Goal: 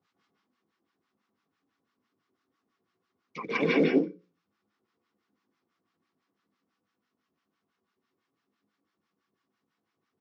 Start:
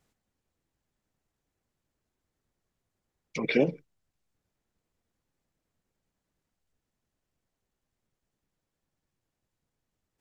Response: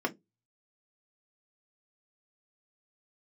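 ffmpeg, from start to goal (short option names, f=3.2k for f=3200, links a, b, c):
-filter_complex "[0:a]asplit=2[a][b];[b]aecho=0:1:139.9|198.3:0.708|0.631[c];[a][c]amix=inputs=2:normalize=0,acrossover=split=820[d][e];[d]aeval=exprs='val(0)*(1-1/2+1/2*cos(2*PI*6*n/s))':c=same[f];[e]aeval=exprs='val(0)*(1-1/2-1/2*cos(2*PI*6*n/s))':c=same[g];[f][g]amix=inputs=2:normalize=0,acrusher=bits=7:mode=log:mix=0:aa=0.000001,highpass=f=120:w=0.5412,highpass=f=120:w=1.3066,equalizer=f=140:t=q:w=4:g=-10,equalizer=f=620:t=q:w=4:g=-8,equalizer=f=1.2k:t=q:w=4:g=8,lowpass=f=5.2k:w=0.5412,lowpass=f=5.2k:w=1.3066,bandreject=f=60:t=h:w=6,bandreject=f=120:t=h:w=6,bandreject=f=180:t=h:w=6,bandreject=f=240:t=h:w=6,bandreject=f=300:t=h:w=6,bandreject=f=360:t=h:w=6,bandreject=f=420:t=h:w=6,bandreject=f=480:t=h:w=6,bandreject=f=540:t=h:w=6,asplit=2[h][i];[1:a]atrim=start_sample=2205,highshelf=f=3.5k:g=9.5,adelay=146[j];[i][j]afir=irnorm=-1:irlink=0,volume=-7.5dB[k];[h][k]amix=inputs=2:normalize=0,volume=4dB"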